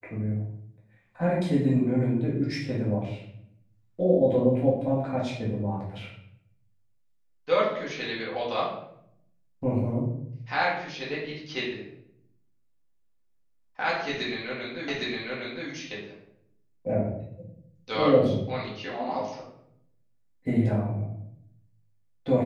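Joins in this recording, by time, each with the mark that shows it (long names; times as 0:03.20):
0:14.88: the same again, the last 0.81 s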